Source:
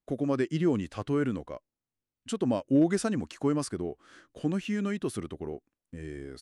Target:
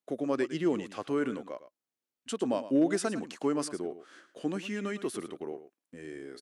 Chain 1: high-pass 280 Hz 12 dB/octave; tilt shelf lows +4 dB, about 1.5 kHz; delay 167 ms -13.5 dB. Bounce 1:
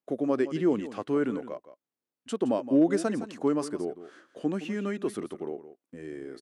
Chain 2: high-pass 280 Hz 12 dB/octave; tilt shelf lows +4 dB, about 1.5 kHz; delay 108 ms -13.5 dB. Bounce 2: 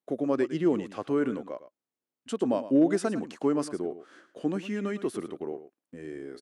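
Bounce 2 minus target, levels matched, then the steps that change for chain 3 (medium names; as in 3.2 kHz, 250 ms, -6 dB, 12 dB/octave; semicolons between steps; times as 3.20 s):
2 kHz band -4.0 dB
remove: tilt shelf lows +4 dB, about 1.5 kHz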